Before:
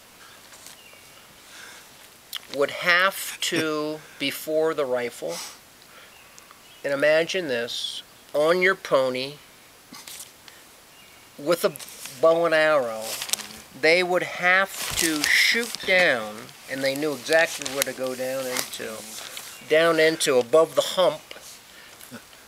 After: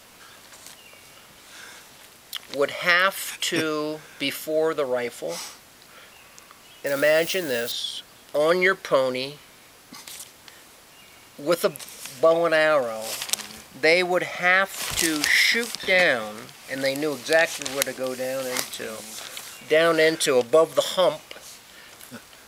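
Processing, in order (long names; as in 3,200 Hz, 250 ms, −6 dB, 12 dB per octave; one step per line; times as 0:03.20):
0:06.86–0:07.72: spike at every zero crossing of −24.5 dBFS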